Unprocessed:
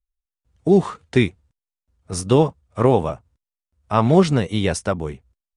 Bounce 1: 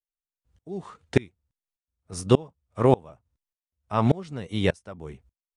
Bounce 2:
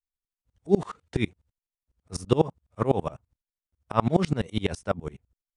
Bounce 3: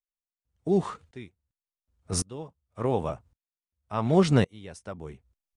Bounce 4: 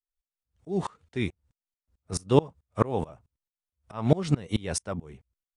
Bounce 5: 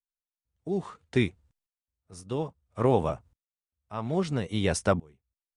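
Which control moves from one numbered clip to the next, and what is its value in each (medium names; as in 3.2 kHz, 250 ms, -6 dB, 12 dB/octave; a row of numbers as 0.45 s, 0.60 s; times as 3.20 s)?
sawtooth tremolo in dB, rate: 1.7 Hz, 12 Hz, 0.9 Hz, 4.6 Hz, 0.6 Hz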